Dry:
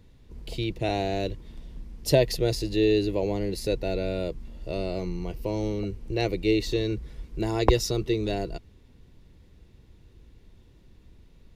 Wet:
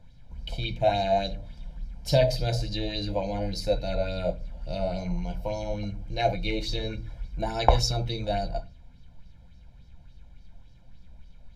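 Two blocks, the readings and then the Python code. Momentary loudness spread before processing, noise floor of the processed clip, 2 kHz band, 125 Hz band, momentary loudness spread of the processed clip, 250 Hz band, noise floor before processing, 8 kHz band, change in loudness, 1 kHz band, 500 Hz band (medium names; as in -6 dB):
15 LU, -51 dBFS, -1.0 dB, +0.5 dB, 15 LU, -6.5 dB, -55 dBFS, -3.0 dB, -1.0 dB, +6.0 dB, -1.5 dB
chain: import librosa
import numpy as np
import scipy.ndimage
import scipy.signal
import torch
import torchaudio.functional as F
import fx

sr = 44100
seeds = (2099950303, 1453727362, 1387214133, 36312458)

y = fx.high_shelf(x, sr, hz=9900.0, db=-10.5)
y = y + 0.93 * np.pad(y, (int(1.3 * sr / 1000.0), 0))[:len(y)]
y = fx.room_shoebox(y, sr, seeds[0], volume_m3=170.0, walls='furnished', distance_m=0.87)
y = fx.bell_lfo(y, sr, hz=3.5, low_hz=610.0, high_hz=5400.0, db=10)
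y = y * 10.0 ** (-5.5 / 20.0)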